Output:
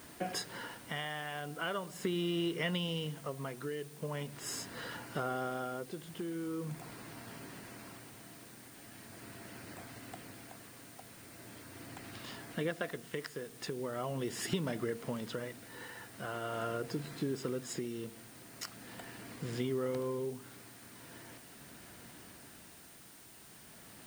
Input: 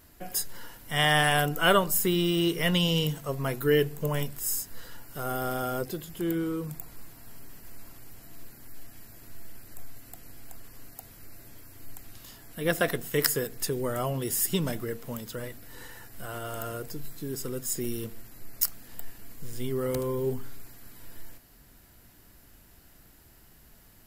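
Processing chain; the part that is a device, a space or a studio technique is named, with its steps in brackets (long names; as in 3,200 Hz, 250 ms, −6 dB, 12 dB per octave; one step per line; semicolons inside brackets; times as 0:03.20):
medium wave at night (band-pass filter 140–3,600 Hz; downward compressor 6 to 1, threshold −39 dBFS, peak gain reduction 20 dB; amplitude tremolo 0.41 Hz, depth 55%; steady tone 9,000 Hz −69 dBFS; white noise bed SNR 17 dB)
level +7 dB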